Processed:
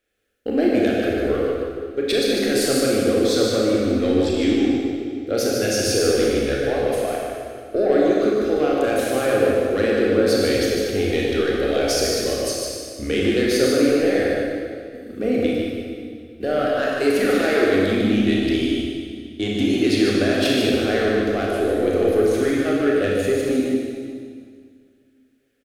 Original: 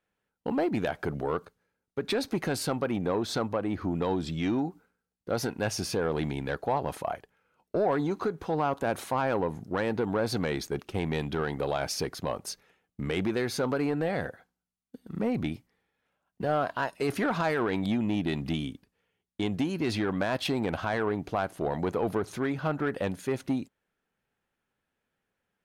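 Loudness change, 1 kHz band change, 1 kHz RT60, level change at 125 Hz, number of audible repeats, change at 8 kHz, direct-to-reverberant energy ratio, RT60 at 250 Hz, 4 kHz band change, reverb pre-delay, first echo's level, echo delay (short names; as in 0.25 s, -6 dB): +10.5 dB, +3.0 dB, 2.0 s, +4.0 dB, 1, +13.0 dB, -4.5 dB, 2.3 s, +12.5 dB, 26 ms, -5.5 dB, 0.149 s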